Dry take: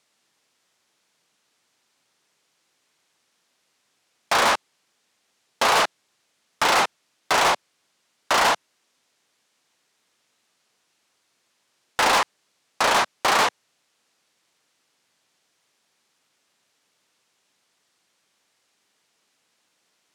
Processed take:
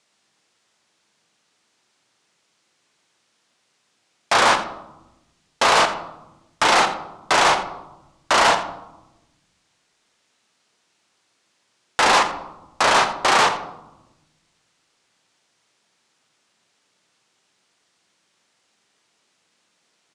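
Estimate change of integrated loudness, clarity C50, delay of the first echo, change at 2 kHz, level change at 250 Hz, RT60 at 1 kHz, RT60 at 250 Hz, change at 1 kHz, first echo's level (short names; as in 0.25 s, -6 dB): +3.0 dB, 9.5 dB, 84 ms, +3.0 dB, +4.5 dB, 0.95 s, 1.5 s, +3.5 dB, -14.5 dB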